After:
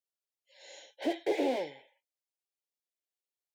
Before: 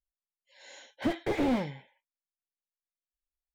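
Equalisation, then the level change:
high-pass filter 230 Hz 24 dB per octave
high-shelf EQ 6,400 Hz −4.5 dB
phaser with its sweep stopped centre 510 Hz, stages 4
+2.5 dB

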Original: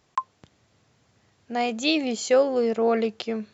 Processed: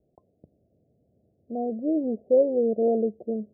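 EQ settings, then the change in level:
Butterworth low-pass 670 Hz 72 dB per octave
parametric band 110 Hz −7 dB 0.43 octaves
0.0 dB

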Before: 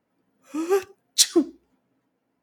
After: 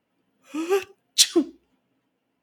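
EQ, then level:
parametric band 2,900 Hz +9.5 dB 0.6 octaves
−1.0 dB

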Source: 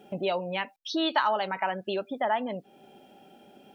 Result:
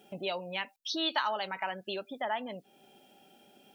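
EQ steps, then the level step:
high-shelf EQ 2,400 Hz +11.5 dB
−8.0 dB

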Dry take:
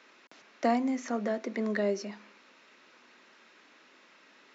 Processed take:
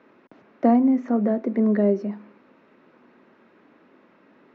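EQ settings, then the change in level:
spectral tilt −4 dB per octave
high-shelf EQ 2,700 Hz −10 dB
high-shelf EQ 6,600 Hz −8.5 dB
+4.0 dB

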